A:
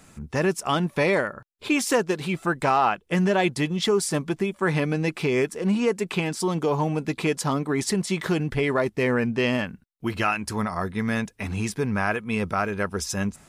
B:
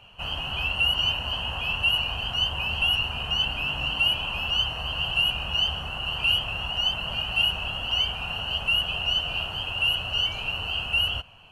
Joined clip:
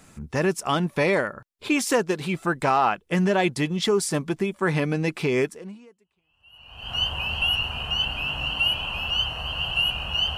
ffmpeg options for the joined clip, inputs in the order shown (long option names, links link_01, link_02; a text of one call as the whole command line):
ffmpeg -i cue0.wav -i cue1.wav -filter_complex "[0:a]apad=whole_dur=10.37,atrim=end=10.37,atrim=end=6.95,asetpts=PTS-STARTPTS[link_01];[1:a]atrim=start=0.85:end=5.77,asetpts=PTS-STARTPTS[link_02];[link_01][link_02]acrossfade=duration=1.5:curve1=exp:curve2=exp" out.wav